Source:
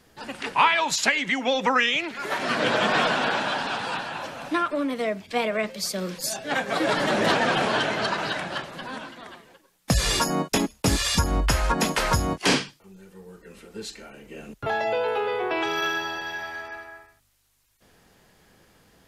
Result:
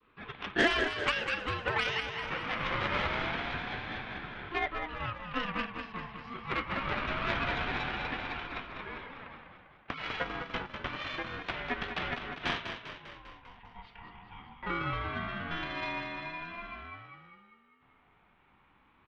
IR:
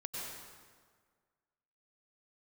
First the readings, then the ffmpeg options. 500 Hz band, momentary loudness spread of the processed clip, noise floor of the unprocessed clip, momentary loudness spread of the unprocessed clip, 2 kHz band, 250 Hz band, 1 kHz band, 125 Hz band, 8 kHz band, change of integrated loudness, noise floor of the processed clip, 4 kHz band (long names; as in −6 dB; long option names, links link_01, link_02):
−12.5 dB, 18 LU, −63 dBFS, 16 LU, −7.5 dB, −11.5 dB, −10.0 dB, −10.5 dB, below −25 dB, −10.0 dB, −66 dBFS, −10.5 dB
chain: -filter_complex "[0:a]adynamicequalizer=threshold=0.0158:dfrequency=1200:dqfactor=0.74:tfrequency=1200:tqfactor=0.74:attack=5:release=100:ratio=0.375:range=2.5:mode=cutabove:tftype=bell,acrossover=split=560|1400[link_01][link_02][link_03];[link_01]acompressor=threshold=-42dB:ratio=6[link_04];[link_04][link_02][link_03]amix=inputs=3:normalize=0,highpass=frequency=220:width_type=q:width=0.5412,highpass=frequency=220:width_type=q:width=1.307,lowpass=frequency=2700:width_type=q:width=0.5176,lowpass=frequency=2700:width_type=q:width=0.7071,lowpass=frequency=2700:width_type=q:width=1.932,afreqshift=50,aeval=exprs='0.422*(cos(1*acos(clip(val(0)/0.422,-1,1)))-cos(1*PI/2))+0.0422*(cos(6*acos(clip(val(0)/0.422,-1,1)))-cos(6*PI/2))':channel_layout=same,asplit=2[link_05][link_06];[link_06]aecho=0:1:199|398|597|796|995|1194|1393:0.422|0.245|0.142|0.0823|0.0477|0.0277|0.0161[link_07];[link_05][link_07]amix=inputs=2:normalize=0,aeval=exprs='val(0)*sin(2*PI*600*n/s+600*0.25/0.25*sin(2*PI*0.25*n/s))':channel_layout=same,volume=-3dB"